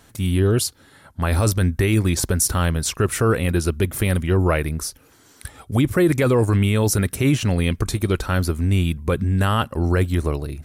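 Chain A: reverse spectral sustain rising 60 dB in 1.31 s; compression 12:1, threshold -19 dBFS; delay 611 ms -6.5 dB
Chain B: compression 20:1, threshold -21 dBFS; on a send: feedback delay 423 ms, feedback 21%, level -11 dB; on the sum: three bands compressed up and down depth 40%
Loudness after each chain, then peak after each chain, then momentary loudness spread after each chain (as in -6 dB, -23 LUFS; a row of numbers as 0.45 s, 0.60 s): -23.5 LUFS, -27.0 LUFS; -3.5 dBFS, -10.0 dBFS; 3 LU, 4 LU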